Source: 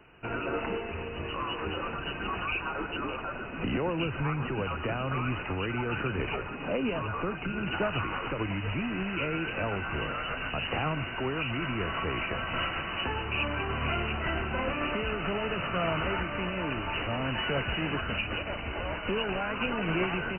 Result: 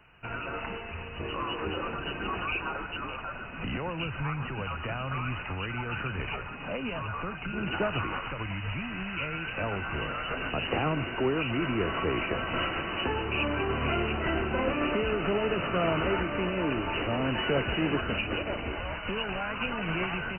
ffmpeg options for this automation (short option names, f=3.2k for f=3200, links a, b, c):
-af "asetnsamples=n=441:p=0,asendcmd='1.2 equalizer g 2;2.77 equalizer g -8;7.53 equalizer g 1;8.2 equalizer g -9.5;9.58 equalizer g -1;10.31 equalizer g 6.5;18.75 equalizer g -5',equalizer=f=360:t=o:w=1.4:g=-9.5"